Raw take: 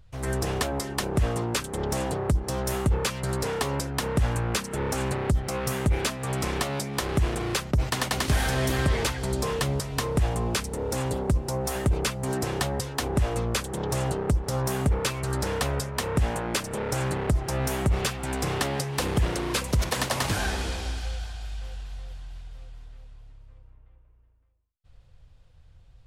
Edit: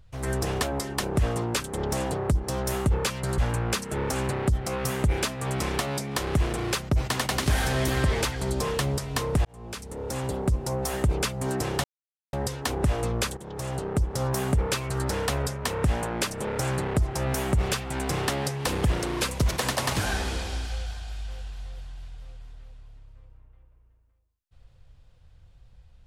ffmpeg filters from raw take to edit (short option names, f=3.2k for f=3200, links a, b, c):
-filter_complex "[0:a]asplit=5[a][b][c][d][e];[a]atrim=end=3.382[f];[b]atrim=start=4.198:end=10.27,asetpts=PTS-STARTPTS,afade=t=out:st=6.068:d=0.004:c=hsin[g];[c]atrim=start=10.27:end=12.66,asetpts=PTS-STARTPTS,afade=t=in:d=1.37:c=qsin,afade=t=out:st=2.386:d=0.004:c=hsin,apad=pad_dur=0.49[h];[d]atrim=start=12.66:end=13.7,asetpts=PTS-STARTPTS,afade=t=in:d=0.004:c=hsin,afade=t=out:st=1.036:d=0.004:c=hsin:silence=0.237137[i];[e]atrim=start=13.7,asetpts=PTS-STARTPTS,afade=t=in:d=0.72:silence=0.237137[j];[g][h][i][j]concat=n=4:v=0:a=1[k];[f][k]acrossfade=d=0.004:c1=hsin:c2=hsin"